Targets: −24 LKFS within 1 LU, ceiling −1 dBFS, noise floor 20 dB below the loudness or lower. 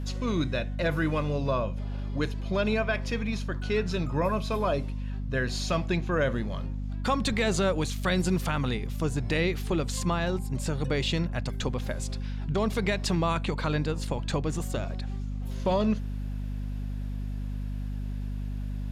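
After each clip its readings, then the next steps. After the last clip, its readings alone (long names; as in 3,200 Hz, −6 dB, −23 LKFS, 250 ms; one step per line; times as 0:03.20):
mains hum 50 Hz; hum harmonics up to 250 Hz; level of the hum −30 dBFS; integrated loudness −29.5 LKFS; sample peak −14.5 dBFS; target loudness −24.0 LKFS
→ mains-hum notches 50/100/150/200/250 Hz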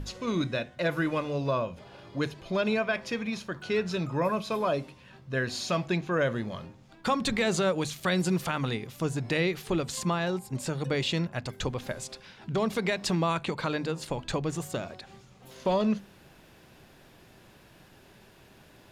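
mains hum none found; integrated loudness −30.0 LKFS; sample peak −16.0 dBFS; target loudness −24.0 LKFS
→ level +6 dB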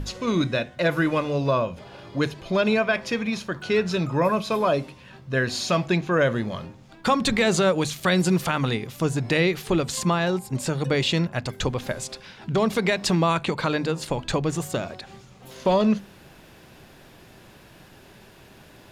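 integrated loudness −24.0 LKFS; sample peak −9.5 dBFS; background noise floor −50 dBFS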